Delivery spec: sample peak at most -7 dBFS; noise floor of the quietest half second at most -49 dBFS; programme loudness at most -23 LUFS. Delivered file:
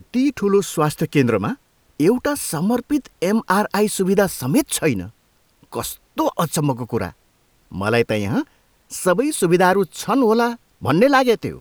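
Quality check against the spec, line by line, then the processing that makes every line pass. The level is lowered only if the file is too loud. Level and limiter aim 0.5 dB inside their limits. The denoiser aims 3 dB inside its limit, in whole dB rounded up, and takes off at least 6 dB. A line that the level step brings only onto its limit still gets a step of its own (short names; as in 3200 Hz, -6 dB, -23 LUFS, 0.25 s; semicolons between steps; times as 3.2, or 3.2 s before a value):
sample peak -3.5 dBFS: fail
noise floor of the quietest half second -60 dBFS: OK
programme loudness -19.5 LUFS: fail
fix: gain -4 dB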